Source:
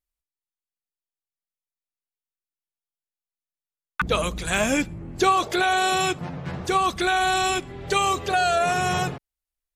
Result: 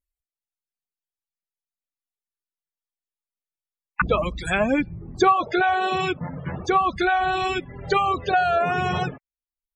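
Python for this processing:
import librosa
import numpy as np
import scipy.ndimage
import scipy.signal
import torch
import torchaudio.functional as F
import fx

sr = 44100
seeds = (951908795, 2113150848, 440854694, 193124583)

y = fx.dereverb_blind(x, sr, rt60_s=0.81)
y = fx.spec_topn(y, sr, count=64)
y = fx.env_lowpass_down(y, sr, base_hz=2000.0, full_db=-20.0)
y = y * librosa.db_to_amplitude(3.0)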